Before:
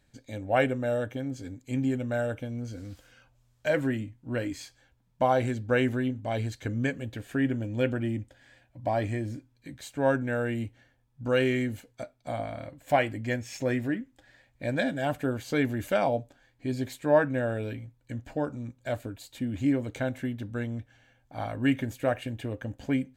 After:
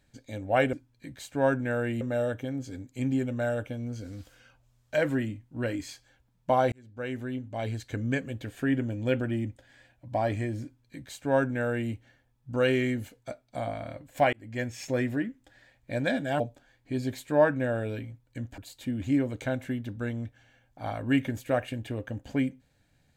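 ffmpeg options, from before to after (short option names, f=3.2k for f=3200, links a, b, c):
-filter_complex "[0:a]asplit=7[a][b][c][d][e][f][g];[a]atrim=end=0.732[h];[b]atrim=start=9.348:end=10.632[i];[c]atrim=start=0.728:end=5.44,asetpts=PTS-STARTPTS,afade=t=out:st=4.708:d=0.004:c=hsin[j];[d]atrim=start=5.44:end=13.05,asetpts=PTS-STARTPTS,afade=t=in:d=1.68:c=qsin,afade=t=out:st=7.606:d=0.004:c=hsin[k];[e]atrim=start=13.05:end=15.122,asetpts=PTS-STARTPTS,afade=t=in:d=0.35[l];[f]atrim=start=16.138:end=18.322[m];[g]atrim=start=19.118[n];[h][i]acrossfade=d=0.004:c1=hsin:c2=hsin[o];[j][k][l]concat=n=3:v=0:a=1[p];[o][p]acrossfade=d=0.004:c1=hsin:c2=hsin[q];[q][m]acrossfade=d=0.004:c1=hsin:c2=hsin[r];[r][n]acrossfade=d=0.004:c1=hsin:c2=hsin"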